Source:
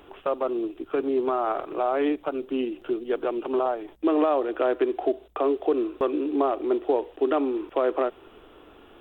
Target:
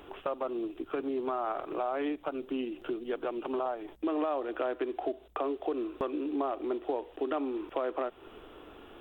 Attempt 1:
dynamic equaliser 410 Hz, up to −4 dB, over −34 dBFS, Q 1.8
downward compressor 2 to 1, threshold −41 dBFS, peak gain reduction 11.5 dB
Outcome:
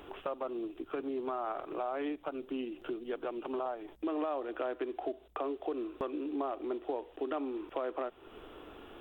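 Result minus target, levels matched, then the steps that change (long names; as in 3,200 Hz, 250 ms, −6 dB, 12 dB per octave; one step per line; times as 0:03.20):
downward compressor: peak gain reduction +3.5 dB
change: downward compressor 2 to 1, threshold −34 dBFS, peak gain reduction 8 dB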